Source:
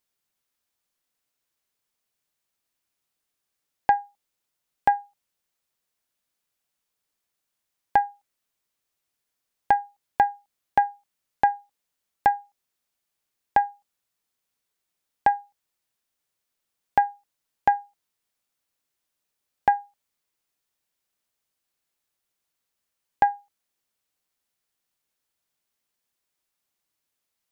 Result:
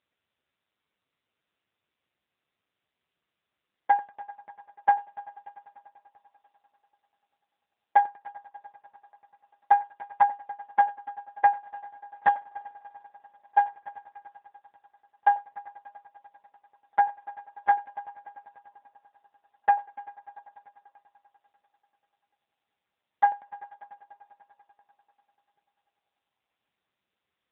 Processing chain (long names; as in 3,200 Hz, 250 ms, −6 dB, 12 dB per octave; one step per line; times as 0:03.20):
0:12.27–0:13.58: gain on one half-wave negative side −3 dB
echo machine with several playback heads 98 ms, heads first and third, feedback 69%, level −21.5 dB
level +2.5 dB
AMR narrowband 6.7 kbit/s 8,000 Hz